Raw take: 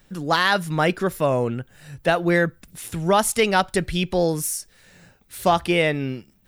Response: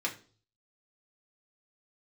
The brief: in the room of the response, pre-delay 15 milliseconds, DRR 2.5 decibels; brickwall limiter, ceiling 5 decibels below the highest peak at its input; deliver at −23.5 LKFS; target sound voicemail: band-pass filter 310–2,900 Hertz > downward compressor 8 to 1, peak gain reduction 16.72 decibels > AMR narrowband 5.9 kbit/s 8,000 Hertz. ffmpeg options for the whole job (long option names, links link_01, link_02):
-filter_complex "[0:a]alimiter=limit=-10.5dB:level=0:latency=1,asplit=2[link_01][link_02];[1:a]atrim=start_sample=2205,adelay=15[link_03];[link_02][link_03]afir=irnorm=-1:irlink=0,volume=-8dB[link_04];[link_01][link_04]amix=inputs=2:normalize=0,highpass=310,lowpass=2900,acompressor=threshold=-31dB:ratio=8,volume=13.5dB" -ar 8000 -c:a libopencore_amrnb -b:a 5900